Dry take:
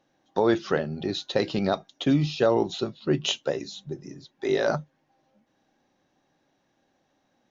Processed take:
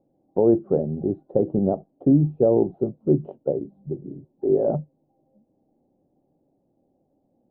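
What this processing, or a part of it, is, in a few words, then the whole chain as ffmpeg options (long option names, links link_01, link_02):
under water: -af "lowpass=frequency=560:width=0.5412,lowpass=frequency=560:width=1.3066,equalizer=frequency=780:width_type=o:width=0.41:gain=4,volume=5dB"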